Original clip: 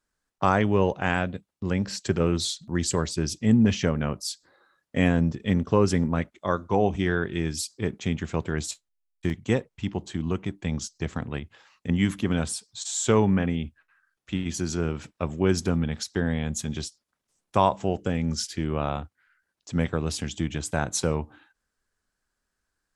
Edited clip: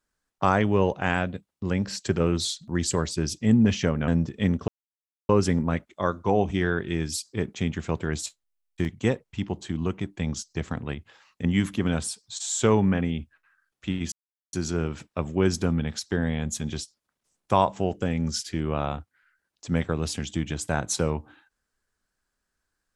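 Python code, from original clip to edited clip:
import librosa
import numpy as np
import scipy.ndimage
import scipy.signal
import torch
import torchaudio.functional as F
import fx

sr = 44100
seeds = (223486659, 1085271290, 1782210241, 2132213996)

y = fx.edit(x, sr, fx.cut(start_s=4.08, length_s=1.06),
    fx.insert_silence(at_s=5.74, length_s=0.61),
    fx.insert_silence(at_s=14.57, length_s=0.41), tone=tone)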